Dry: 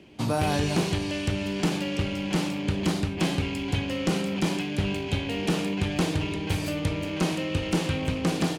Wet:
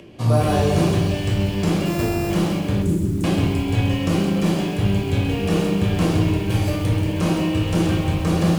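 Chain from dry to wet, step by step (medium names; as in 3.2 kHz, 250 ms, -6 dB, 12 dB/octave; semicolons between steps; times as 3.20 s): 1.85–2.30 s: sorted samples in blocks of 128 samples; reverberation RT60 0.85 s, pre-delay 8 ms, DRR -3 dB; upward compressor, threshold -37 dBFS; treble shelf 5.9 kHz +10.5 dB; 2.82–3.24 s: elliptic band-stop 380–7400 Hz; treble shelf 2.3 kHz -9.5 dB; bit-crushed delay 131 ms, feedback 35%, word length 6-bit, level -8.5 dB; trim -1 dB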